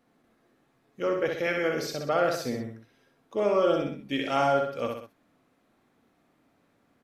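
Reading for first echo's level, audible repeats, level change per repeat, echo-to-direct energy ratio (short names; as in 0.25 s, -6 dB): -4.0 dB, 3, -6.0 dB, -3.0 dB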